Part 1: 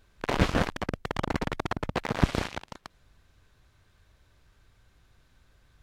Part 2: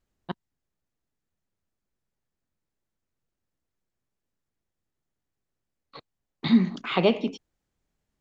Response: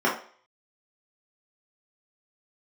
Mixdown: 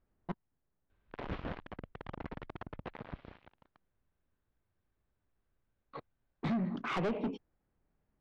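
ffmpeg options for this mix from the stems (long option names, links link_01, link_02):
-filter_complex "[0:a]lowpass=frequency=3700:width=0.5412,lowpass=frequency=3700:width=1.3066,highshelf=frequency=2900:gain=-7.5,adelay=900,volume=-12.5dB,afade=type=out:start_time=2.91:duration=0.27:silence=0.316228[link_01];[1:a]lowpass=1600,acompressor=threshold=-23dB:ratio=5,volume=1.5dB[link_02];[link_01][link_02]amix=inputs=2:normalize=0,asoftclip=type=tanh:threshold=-29.5dB"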